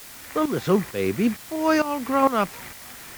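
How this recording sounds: tremolo saw up 2.2 Hz, depth 85%; a quantiser's noise floor 8-bit, dither triangular; WMA

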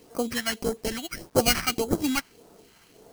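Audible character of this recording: aliases and images of a low sample rate 3600 Hz, jitter 0%; phasing stages 2, 1.7 Hz, lowest notch 450–2600 Hz; a quantiser's noise floor 10-bit, dither none; Vorbis

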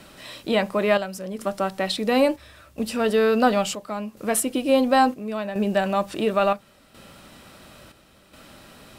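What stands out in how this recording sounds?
chopped level 0.72 Hz, depth 60%, duty 70%

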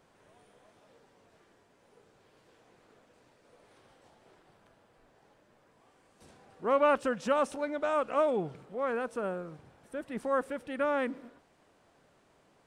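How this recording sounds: noise floor -66 dBFS; spectral tilt -4.0 dB/oct

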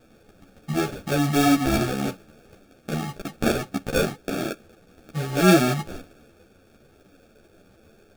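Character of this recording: aliases and images of a low sample rate 1000 Hz, jitter 0%; a shimmering, thickened sound

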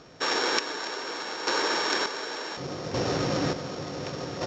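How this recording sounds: a buzz of ramps at a fixed pitch in blocks of 8 samples; chopped level 0.68 Hz, depth 60%, duty 40%; µ-law

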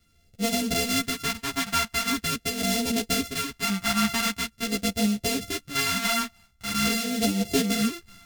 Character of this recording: a buzz of ramps at a fixed pitch in blocks of 64 samples; phasing stages 2, 0.44 Hz, lowest notch 460–1100 Hz; tremolo saw up 0.92 Hz, depth 35%; a shimmering, thickened sound

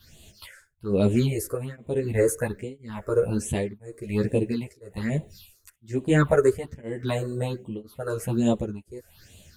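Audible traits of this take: a quantiser's noise floor 12-bit, dither none; phasing stages 6, 1.2 Hz, lowest notch 200–1500 Hz; tremolo triangle 0.99 Hz, depth 100%; a shimmering, thickened sound

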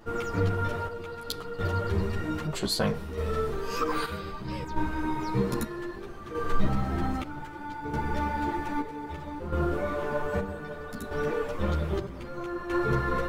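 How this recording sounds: chopped level 0.63 Hz, depth 60%, duty 55%; a shimmering, thickened sound

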